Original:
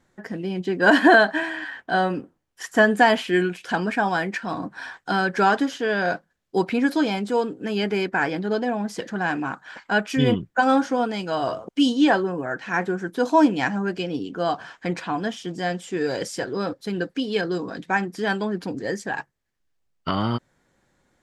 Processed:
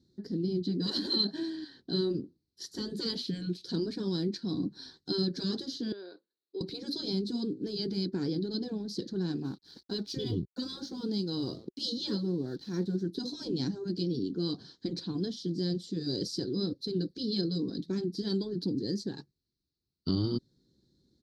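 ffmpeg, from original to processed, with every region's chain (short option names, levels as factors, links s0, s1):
-filter_complex "[0:a]asettb=1/sr,asplit=3[s0][s1][s2];[s0]atrim=end=5.924[s3];[s1]atrim=start=5.92:end=6.61,asetpts=PTS-STARTPTS,afade=t=in:d=0.004:c=qsin,afade=t=out:st=0.686:d=0.004:c=qsin,acompressor=threshold=0.0398:ratio=2:attack=3.2:release=140:knee=1:detection=peak,highpass=f=430:w=0.5412,highpass=f=430:w=1.3066,equalizer=f=490:t=q:w=4:g=-3,equalizer=f=720:t=q:w=4:g=-9,equalizer=f=1900:t=q:w=4:g=-4,equalizer=f=3000:t=q:w=4:g=-6,lowpass=f=3400:w=0.5412,lowpass=f=3400:w=1.3066[s4];[s2]atrim=start=6.606[s5];[s3][s4]acrossfade=d=0.004:c1=hsin:c2=qsin[s6];[s6][s5]acrossfade=d=0.004:c1=qsin:c2=hsin,asettb=1/sr,asplit=3[s7][s8][s9];[s7]atrim=end=9.444[s10];[s8]atrim=start=9.44:end=13.02,asetpts=PTS-STARTPTS,afade=t=in:d=0.004:c=qsin,afade=t=out:st=3.576:d=0.004:c=qsin,aeval=exprs='sgn(val(0))*max(abs(val(0))-0.00376,0)':c=same,equalizer=f=820:w=4.4:g=4[s11];[s9]atrim=start=13.016[s12];[s10][s11]acrossfade=d=0.004:c1=hsin:c2=qsin[s13];[s13][s12]acrossfade=d=0.004:c1=qsin:c2=hsin,highpass=47,afftfilt=real='re*lt(hypot(re,im),0.447)':imag='im*lt(hypot(re,im),0.447)':win_size=1024:overlap=0.75,firequalizer=gain_entry='entry(370,0);entry(630,-24);entry(2600,-28);entry(4100,7);entry(7200,-15);entry(11000,-13)':delay=0.05:min_phase=1"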